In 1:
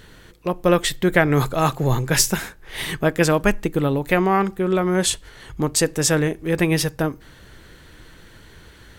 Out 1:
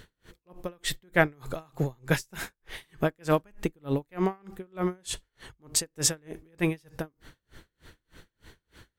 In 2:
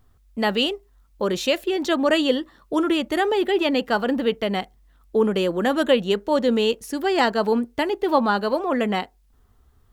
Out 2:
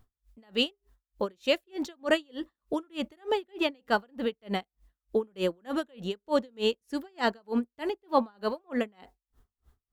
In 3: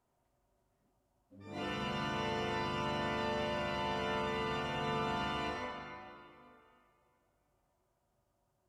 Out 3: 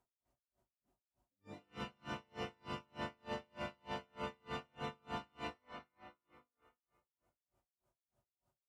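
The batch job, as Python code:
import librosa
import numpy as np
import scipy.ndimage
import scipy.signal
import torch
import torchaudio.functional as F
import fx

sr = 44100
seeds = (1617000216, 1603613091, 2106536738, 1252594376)

y = x * 10.0 ** (-38 * (0.5 - 0.5 * np.cos(2.0 * np.pi * 3.3 * np.arange(len(x)) / sr)) / 20.0)
y = y * 10.0 ** (-3.0 / 20.0)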